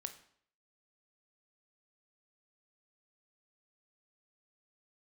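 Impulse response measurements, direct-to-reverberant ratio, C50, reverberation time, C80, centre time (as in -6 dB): 7.5 dB, 12.0 dB, 0.60 s, 15.5 dB, 9 ms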